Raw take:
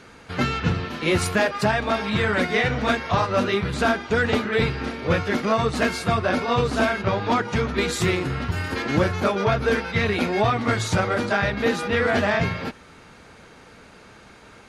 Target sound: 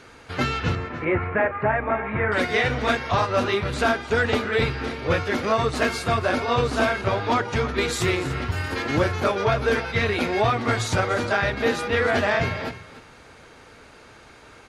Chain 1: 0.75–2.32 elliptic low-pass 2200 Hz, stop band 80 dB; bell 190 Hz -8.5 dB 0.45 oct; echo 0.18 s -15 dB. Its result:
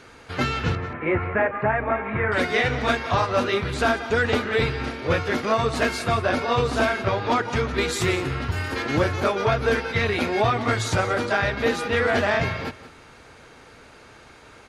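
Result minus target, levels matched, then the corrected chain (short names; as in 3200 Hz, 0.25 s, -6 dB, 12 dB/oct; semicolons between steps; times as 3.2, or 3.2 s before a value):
echo 0.113 s early
0.75–2.32 elliptic low-pass 2200 Hz, stop band 80 dB; bell 190 Hz -8.5 dB 0.45 oct; echo 0.293 s -15 dB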